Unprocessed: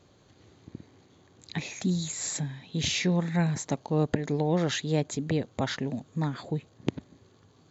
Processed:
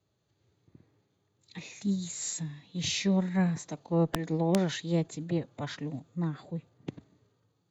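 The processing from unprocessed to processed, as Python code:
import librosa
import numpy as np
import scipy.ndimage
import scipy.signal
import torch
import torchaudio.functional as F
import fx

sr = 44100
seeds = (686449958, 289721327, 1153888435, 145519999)

y = fx.hpss(x, sr, part='harmonic', gain_db=6)
y = fx.pitch_keep_formants(y, sr, semitones=1.5)
y = fx.cheby_harmonics(y, sr, harmonics=(2,), levels_db=(-27,), full_scale_db=-9.0)
y = (np.mod(10.0 ** (10.0 / 20.0) * y + 1.0, 2.0) - 1.0) / 10.0 ** (10.0 / 20.0)
y = fx.band_widen(y, sr, depth_pct=40)
y = y * 10.0 ** (-7.5 / 20.0)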